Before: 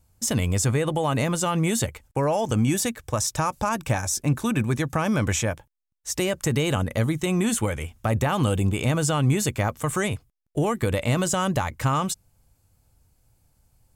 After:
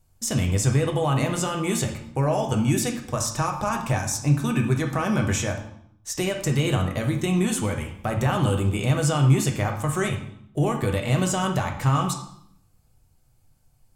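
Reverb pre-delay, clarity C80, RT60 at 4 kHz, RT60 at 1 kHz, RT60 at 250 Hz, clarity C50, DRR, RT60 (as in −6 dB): 3 ms, 11.0 dB, 0.65 s, 0.70 s, 0.85 s, 7.5 dB, 2.0 dB, 0.70 s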